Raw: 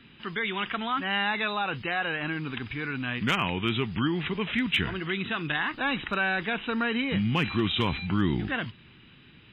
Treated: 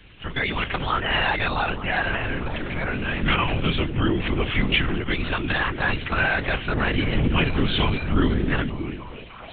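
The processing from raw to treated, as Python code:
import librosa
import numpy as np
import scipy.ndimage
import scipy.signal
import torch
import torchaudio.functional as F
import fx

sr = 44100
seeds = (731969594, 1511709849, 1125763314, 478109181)

y = fx.echo_stepped(x, sr, ms=300, hz=240.0, octaves=0.7, feedback_pct=70, wet_db=-3.5)
y = fx.lpc_vocoder(y, sr, seeds[0], excitation='whisper', order=10)
y = F.gain(torch.from_numpy(y), 5.0).numpy()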